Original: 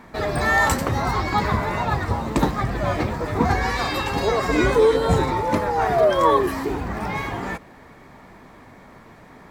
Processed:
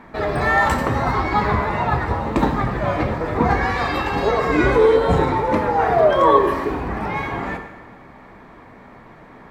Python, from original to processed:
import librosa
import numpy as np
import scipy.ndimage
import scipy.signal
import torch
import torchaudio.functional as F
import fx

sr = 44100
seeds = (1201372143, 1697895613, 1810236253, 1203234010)

y = fx.bass_treble(x, sr, bass_db=-2, treble_db=-12)
y = fx.rev_plate(y, sr, seeds[0], rt60_s=1.3, hf_ratio=0.85, predelay_ms=0, drr_db=5.5)
y = F.gain(torch.from_numpy(y), 2.0).numpy()